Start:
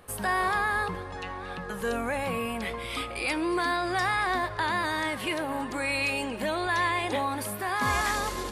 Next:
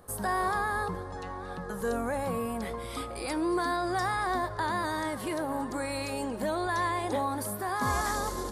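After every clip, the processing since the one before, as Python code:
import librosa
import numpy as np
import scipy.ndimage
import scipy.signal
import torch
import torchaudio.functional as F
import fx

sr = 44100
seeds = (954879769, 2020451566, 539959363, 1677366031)

y = fx.peak_eq(x, sr, hz=2600.0, db=-14.5, octaves=0.96)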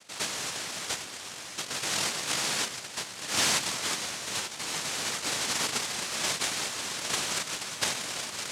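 y = fx.low_shelf_res(x, sr, hz=410.0, db=11.0, q=1.5)
y = fx.noise_vocoder(y, sr, seeds[0], bands=1)
y = y * librosa.db_to_amplitude(-7.5)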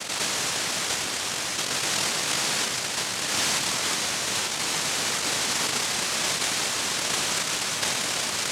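y = fx.env_flatten(x, sr, amount_pct=70)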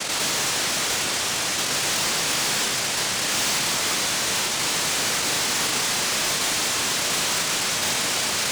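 y = 10.0 ** (-28.0 / 20.0) * np.tanh(x / 10.0 ** (-28.0 / 20.0))
y = fx.room_flutter(y, sr, wall_m=6.2, rt60_s=0.2)
y = y * librosa.db_to_amplitude(7.5)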